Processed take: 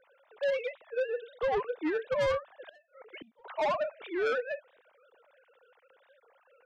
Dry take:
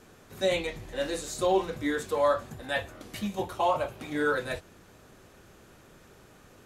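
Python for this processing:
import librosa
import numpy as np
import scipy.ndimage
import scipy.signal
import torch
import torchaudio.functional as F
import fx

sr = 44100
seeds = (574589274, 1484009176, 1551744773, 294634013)

y = fx.sine_speech(x, sr)
y = fx.rider(y, sr, range_db=4, speed_s=2.0)
y = 10.0 ** (-28.0 / 20.0) * np.tanh(y / 10.0 ** (-28.0 / 20.0))
y = fx.gate_flip(y, sr, shuts_db=-38.0, range_db=-28, at=(2.67, 3.45), fade=0.02)
y = fx.record_warp(y, sr, rpm=45.0, depth_cents=160.0)
y = y * librosa.db_to_amplitude(2.5)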